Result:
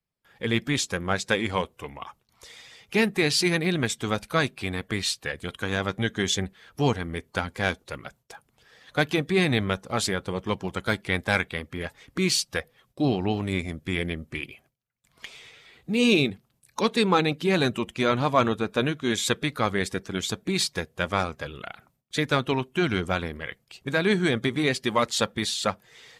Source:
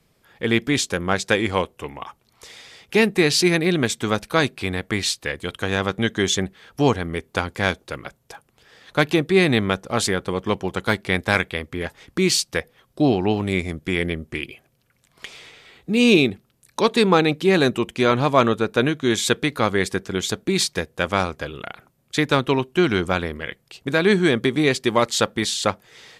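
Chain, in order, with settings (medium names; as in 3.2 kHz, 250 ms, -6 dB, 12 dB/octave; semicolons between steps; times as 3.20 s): coarse spectral quantiser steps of 15 dB; gate with hold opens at -48 dBFS; peaking EQ 360 Hz -3.5 dB 0.86 oct; trim -3.5 dB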